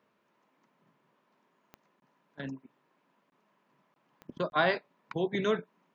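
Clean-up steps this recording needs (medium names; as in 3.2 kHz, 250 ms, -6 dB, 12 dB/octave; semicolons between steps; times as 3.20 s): de-click; interpolate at 2.00/3.30/3.94/4.50 s, 21 ms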